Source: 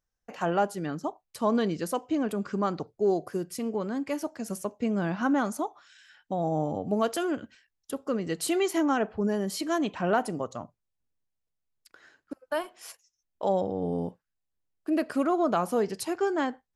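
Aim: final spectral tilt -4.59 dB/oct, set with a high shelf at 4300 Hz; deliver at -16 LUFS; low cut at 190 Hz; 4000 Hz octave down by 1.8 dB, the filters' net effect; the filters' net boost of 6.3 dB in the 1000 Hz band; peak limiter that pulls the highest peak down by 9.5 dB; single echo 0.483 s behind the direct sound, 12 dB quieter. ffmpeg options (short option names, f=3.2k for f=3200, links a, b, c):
-af "highpass=190,equalizer=f=1k:t=o:g=8.5,equalizer=f=4k:t=o:g=-7.5,highshelf=f=4.3k:g=7.5,alimiter=limit=-18dB:level=0:latency=1,aecho=1:1:483:0.251,volume=13.5dB"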